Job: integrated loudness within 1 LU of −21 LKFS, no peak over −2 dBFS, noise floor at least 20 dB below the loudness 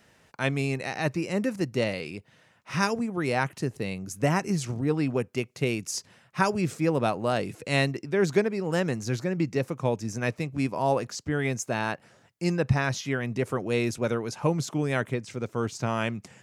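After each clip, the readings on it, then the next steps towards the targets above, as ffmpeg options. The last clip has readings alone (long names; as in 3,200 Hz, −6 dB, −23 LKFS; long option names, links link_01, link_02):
integrated loudness −28.5 LKFS; sample peak −7.5 dBFS; target loudness −21.0 LKFS
→ -af "volume=7.5dB,alimiter=limit=-2dB:level=0:latency=1"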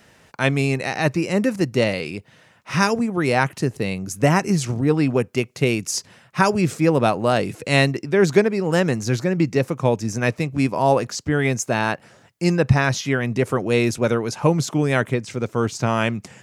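integrated loudness −21.0 LKFS; sample peak −2.0 dBFS; background noise floor −54 dBFS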